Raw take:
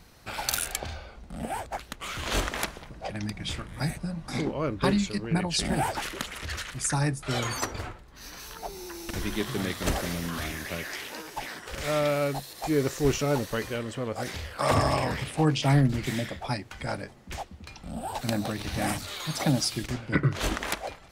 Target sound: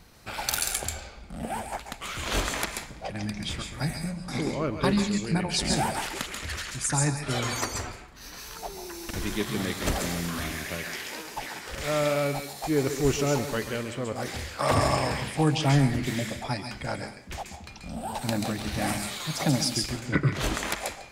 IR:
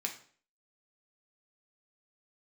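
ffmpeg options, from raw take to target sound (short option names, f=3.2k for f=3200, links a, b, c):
-filter_complex "[0:a]asplit=2[a][b];[b]equalizer=f=8.4k:t=o:w=1.6:g=8.5[c];[1:a]atrim=start_sample=2205,adelay=135[d];[c][d]afir=irnorm=-1:irlink=0,volume=-9dB[e];[a][e]amix=inputs=2:normalize=0"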